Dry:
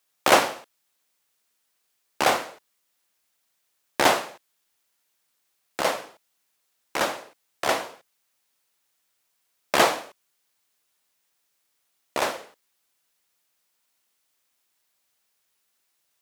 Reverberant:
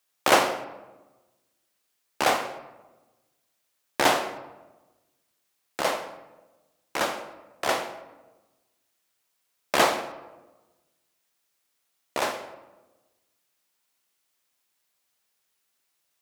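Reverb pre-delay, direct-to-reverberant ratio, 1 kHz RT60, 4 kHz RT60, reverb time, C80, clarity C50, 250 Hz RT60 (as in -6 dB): 21 ms, 9.0 dB, 1.1 s, 0.65 s, 1.1 s, 12.5 dB, 10.5 dB, 1.4 s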